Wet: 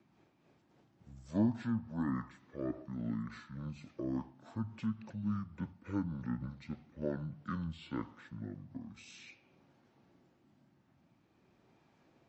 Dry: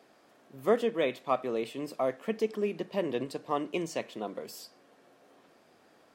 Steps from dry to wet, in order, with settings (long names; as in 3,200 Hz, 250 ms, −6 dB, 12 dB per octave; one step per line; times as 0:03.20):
rotating-speaker cabinet horn 7 Hz, later 0.9 Hz, at 0:03.33
wrong playback speed 15 ips tape played at 7.5 ips
level −5 dB